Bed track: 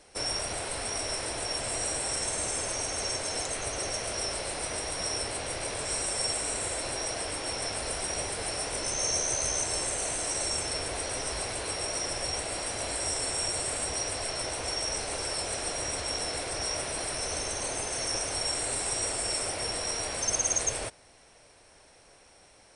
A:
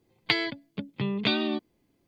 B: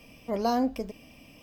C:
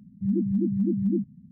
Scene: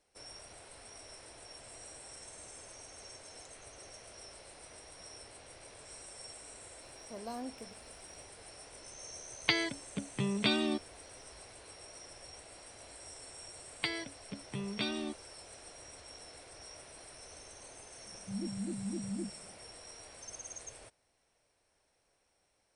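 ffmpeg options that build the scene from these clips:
-filter_complex "[1:a]asplit=2[a][b];[0:a]volume=-19dB[c];[2:a]highpass=110,atrim=end=1.42,asetpts=PTS-STARTPTS,volume=-16dB,afade=t=in:d=0.004:c=hsin,afade=t=out:st=1.416:d=0.004:c=hsin,adelay=300762S[d];[a]atrim=end=2.07,asetpts=PTS-STARTPTS,volume=-4dB,afade=t=in:d=0.004:c=hsin,afade=t=out:st=2.066:d=0.004:c=hsin,adelay=9190[e];[b]atrim=end=2.07,asetpts=PTS-STARTPTS,volume=-10dB,afade=t=in:d=0.004:c=hsin,afade=t=out:st=2.066:d=0.004:c=hsin,adelay=13540[f];[3:a]atrim=end=1.51,asetpts=PTS-STARTPTS,volume=-14dB,afade=t=in:d=0.004:c=hsin,afade=t=out:st=1.506:d=0.004:c=hsin,adelay=18060[g];[c][d][e][f][g]amix=inputs=5:normalize=0"

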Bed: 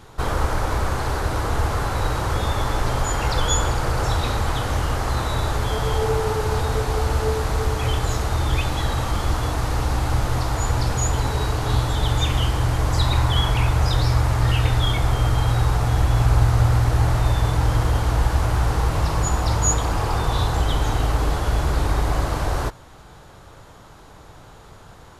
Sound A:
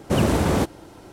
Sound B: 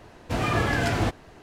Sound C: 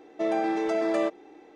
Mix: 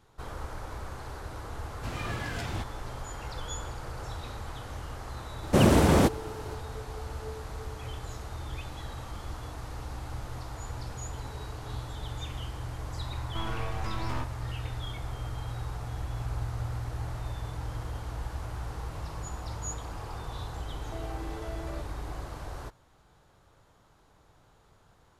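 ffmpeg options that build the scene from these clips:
-filter_complex "[3:a]asplit=2[a][b];[0:a]volume=-17dB[c];[2:a]equalizer=f=530:w=0.39:g=-7[d];[a]aeval=exprs='abs(val(0))':c=same[e];[b]acompressor=threshold=-36dB:ratio=6:attack=3.2:release=140:knee=1:detection=peak[f];[d]atrim=end=1.42,asetpts=PTS-STARTPTS,volume=-8dB,afade=t=in:d=0.004:c=hsin,afade=t=out:st=1.416:d=0.004:c=hsin,adelay=1530[g];[1:a]atrim=end=1.12,asetpts=PTS-STARTPTS,volume=-0.5dB,afade=t=in:d=0.004:c=hsin,afade=t=out:st=1.116:d=0.004:c=hsin,adelay=5430[h];[e]atrim=end=1.55,asetpts=PTS-STARTPTS,volume=-7.5dB,afade=t=in:d=0.004:c=hsin,afade=t=out:st=1.546:d=0.004:c=hsin,adelay=13150[i];[f]atrim=end=1.55,asetpts=PTS-STARTPTS,volume=-3.5dB,afade=t=in:d=0.004:c=hsin,afade=t=out:st=1.546:d=0.004:c=hsin,adelay=20730[j];[c][g][h][i][j]amix=inputs=5:normalize=0"

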